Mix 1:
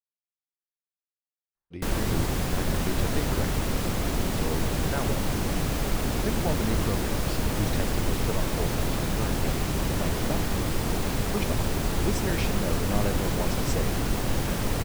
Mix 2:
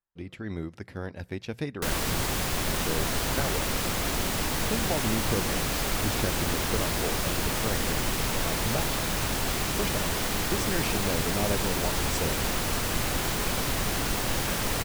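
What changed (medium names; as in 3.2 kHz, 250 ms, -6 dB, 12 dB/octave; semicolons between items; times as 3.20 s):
speech: entry -1.55 s; background: add tilt shelf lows -5 dB, about 650 Hz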